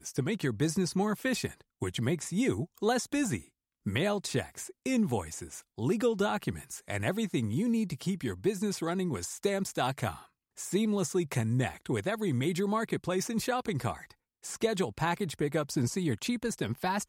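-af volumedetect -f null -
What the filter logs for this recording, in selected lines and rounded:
mean_volume: -31.6 dB
max_volume: -15.8 dB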